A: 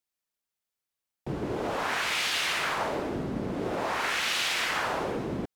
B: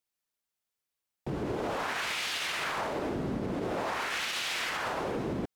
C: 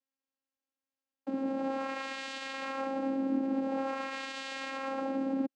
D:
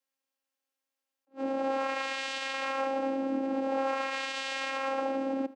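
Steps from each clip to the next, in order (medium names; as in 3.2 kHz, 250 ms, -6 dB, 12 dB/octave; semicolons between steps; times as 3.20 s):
peak limiter -24 dBFS, peak gain reduction 8.5 dB
vocoder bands 8, saw 269 Hz
high-pass 400 Hz 12 dB/octave; echo from a far wall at 16 m, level -17 dB; attacks held to a fixed rise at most 360 dB/s; trim +5.5 dB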